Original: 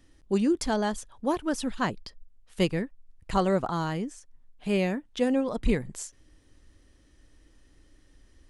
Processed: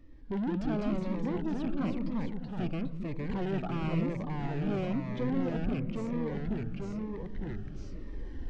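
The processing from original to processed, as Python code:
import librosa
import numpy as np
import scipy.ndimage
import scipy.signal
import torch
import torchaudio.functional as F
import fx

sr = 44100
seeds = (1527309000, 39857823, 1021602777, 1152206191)

p1 = fx.rattle_buzz(x, sr, strikes_db=-36.0, level_db=-18.0)
p2 = fx.recorder_agc(p1, sr, target_db=-16.0, rise_db_per_s=5.4, max_gain_db=30)
p3 = fx.hpss(p2, sr, part='harmonic', gain_db=7)
p4 = 10.0 ** (-29.0 / 20.0) * np.tanh(p3 / 10.0 ** (-29.0 / 20.0))
p5 = p4 + fx.echo_stepped(p4, sr, ms=200, hz=170.0, octaves=0.7, feedback_pct=70, wet_db=-5.5, dry=0)
p6 = fx.echo_pitch(p5, sr, ms=126, semitones=-2, count=2, db_per_echo=-3.0)
p7 = fx.spacing_loss(p6, sr, db_at_10k=37)
y = fx.notch_cascade(p7, sr, direction='falling', hz=1.0)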